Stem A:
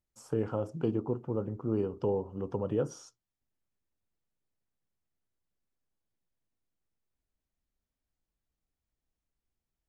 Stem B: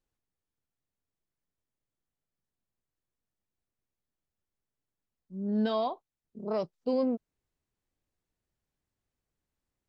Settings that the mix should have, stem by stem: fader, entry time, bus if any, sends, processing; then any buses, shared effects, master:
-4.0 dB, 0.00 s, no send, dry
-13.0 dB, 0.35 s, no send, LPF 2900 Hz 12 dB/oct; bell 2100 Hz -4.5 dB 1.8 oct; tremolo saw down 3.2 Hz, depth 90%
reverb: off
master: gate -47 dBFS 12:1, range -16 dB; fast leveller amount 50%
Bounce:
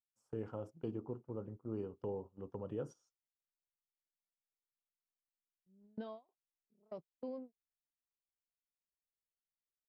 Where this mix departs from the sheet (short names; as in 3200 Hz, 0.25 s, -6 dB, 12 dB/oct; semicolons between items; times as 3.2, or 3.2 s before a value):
stem A -4.0 dB -> -11.0 dB; master: missing fast leveller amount 50%